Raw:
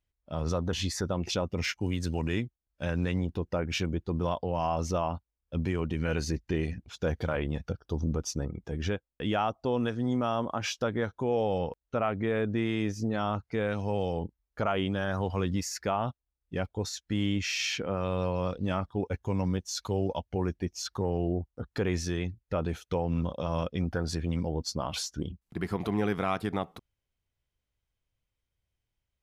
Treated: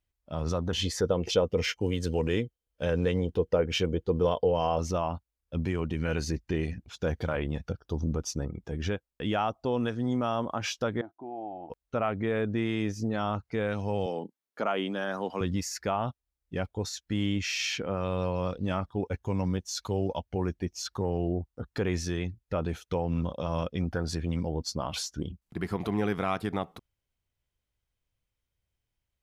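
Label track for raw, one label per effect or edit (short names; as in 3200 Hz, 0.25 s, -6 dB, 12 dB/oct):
0.740000	4.790000	small resonant body resonances 470/3100 Hz, height 14 dB
11.010000	11.700000	double band-pass 480 Hz, apart 1.1 oct
14.060000	15.410000	HPF 200 Hz 24 dB/oct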